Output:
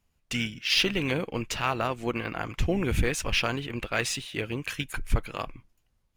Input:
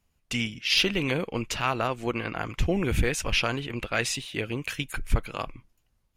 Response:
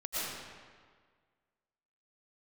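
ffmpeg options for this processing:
-filter_complex "[0:a]asplit=2[link_01][link_02];[link_02]asetrate=29433,aresample=44100,atempo=1.49831,volume=-17dB[link_03];[link_01][link_03]amix=inputs=2:normalize=0,volume=-1dB" -ar 44100 -c:a adpcm_ima_wav

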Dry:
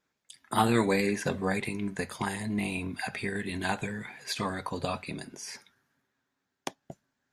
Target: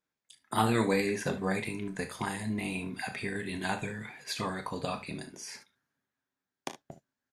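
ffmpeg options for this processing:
ffmpeg -i in.wav -af "aecho=1:1:27|37|61|74:0.251|0.237|0.15|0.168,agate=range=-7dB:threshold=-49dB:ratio=16:detection=peak,volume=-2.5dB" out.wav

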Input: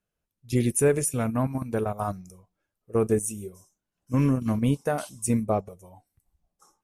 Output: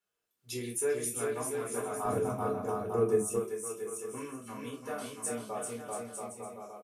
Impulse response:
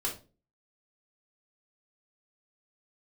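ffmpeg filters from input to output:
-filter_complex "[0:a]dynaudnorm=framelen=100:gausssize=7:maxgain=9.5dB,aecho=1:1:390|682.5|901.9|1066|1190:0.631|0.398|0.251|0.158|0.1,acompressor=threshold=-44dB:ratio=2,asetnsamples=nb_out_samples=441:pad=0,asendcmd='2.05 highpass f 130;3.36 highpass f 1100',highpass=frequency=830:poles=1[link_01];[1:a]atrim=start_sample=2205,atrim=end_sample=3969[link_02];[link_01][link_02]afir=irnorm=-1:irlink=0,volume=-1.5dB"

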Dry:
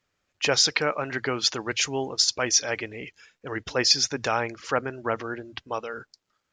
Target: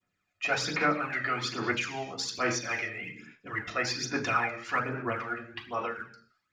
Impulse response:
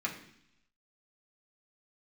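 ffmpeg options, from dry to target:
-filter_complex "[1:a]atrim=start_sample=2205,afade=type=out:start_time=0.36:duration=0.01,atrim=end_sample=16317[link_01];[0:a][link_01]afir=irnorm=-1:irlink=0,adynamicequalizer=threshold=0.0178:dfrequency=1800:dqfactor=0.73:tfrequency=1800:tqfactor=0.73:attack=5:release=100:ratio=0.375:range=2:mode=boostabove:tftype=bell,aphaser=in_gain=1:out_gain=1:delay=1.6:decay=0.53:speed=1.2:type=sinusoidal,acrossover=split=1500[link_02][link_03];[link_03]alimiter=limit=-14.5dB:level=0:latency=1:release=237[link_04];[link_02][link_04]amix=inputs=2:normalize=0,equalizer=frequency=310:width=0.56:gain=-2,volume=-8.5dB"

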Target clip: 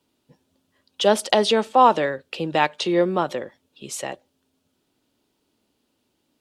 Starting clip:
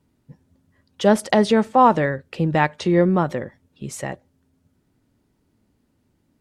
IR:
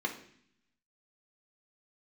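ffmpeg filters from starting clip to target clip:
-filter_complex "[0:a]acrossover=split=280 2800:gain=0.178 1 0.1[link_01][link_02][link_03];[link_01][link_02][link_03]amix=inputs=3:normalize=0,aexciter=amount=7.7:drive=6.5:freq=2900"

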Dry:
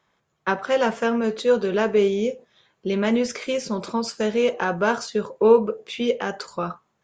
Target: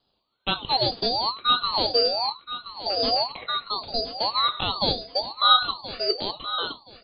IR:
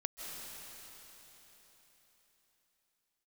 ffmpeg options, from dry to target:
-af "lowpass=frequency=2600:width_type=q:width=0.5098,lowpass=frequency=2600:width_type=q:width=0.6013,lowpass=frequency=2600:width_type=q:width=0.9,lowpass=frequency=2600:width_type=q:width=2.563,afreqshift=-3000,aecho=1:1:1024|2048|3072:0.224|0.0537|0.0129,aeval=exprs='val(0)*sin(2*PI*1700*n/s+1700*0.25/0.99*sin(2*PI*0.99*n/s))':channel_layout=same"

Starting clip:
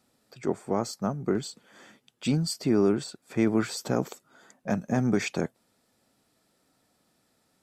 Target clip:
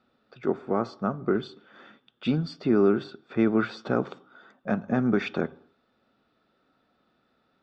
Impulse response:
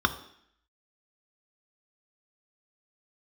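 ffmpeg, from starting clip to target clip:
-filter_complex "[0:a]lowpass=frequency=3600:width=0.5412,lowpass=frequency=3600:width=1.3066,asplit=2[link_01][link_02];[1:a]atrim=start_sample=2205,afade=type=out:start_time=0.33:duration=0.01,atrim=end_sample=14994,lowshelf=frequency=440:gain=-6.5[link_03];[link_02][link_03]afir=irnorm=-1:irlink=0,volume=-17dB[link_04];[link_01][link_04]amix=inputs=2:normalize=0"

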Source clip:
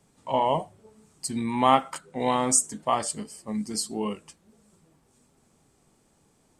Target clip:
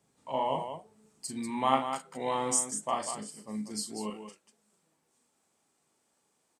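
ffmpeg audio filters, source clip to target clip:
ffmpeg -i in.wav -af "asetnsamples=nb_out_samples=441:pad=0,asendcmd='4.1 highpass f 680',highpass=frequency=150:poles=1,aecho=1:1:37.9|192.4:0.501|0.398,volume=-7.5dB" out.wav

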